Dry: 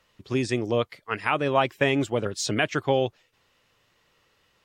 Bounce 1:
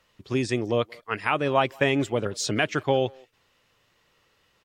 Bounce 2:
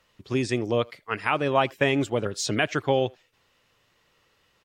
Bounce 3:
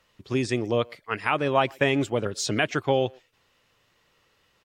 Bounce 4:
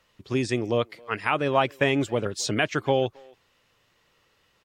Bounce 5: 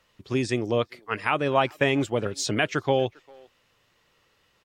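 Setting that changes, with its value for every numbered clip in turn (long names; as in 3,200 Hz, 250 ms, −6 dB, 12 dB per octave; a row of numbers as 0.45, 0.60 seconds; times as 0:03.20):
far-end echo of a speakerphone, delay time: 180, 80, 120, 270, 400 milliseconds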